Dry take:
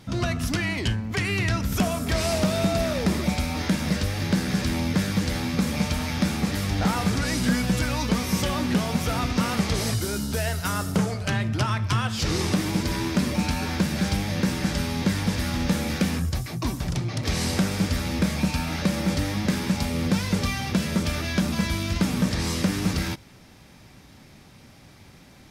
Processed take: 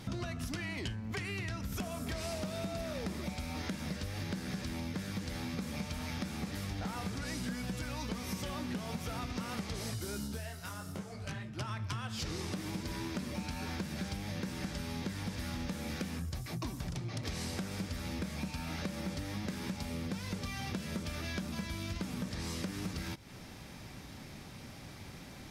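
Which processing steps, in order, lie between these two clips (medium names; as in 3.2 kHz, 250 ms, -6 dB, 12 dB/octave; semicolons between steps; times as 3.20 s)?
compression 8:1, threshold -37 dBFS, peak gain reduction 18.5 dB; 10.27–11.56 s: detune thickener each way 21 cents -> 32 cents; trim +1 dB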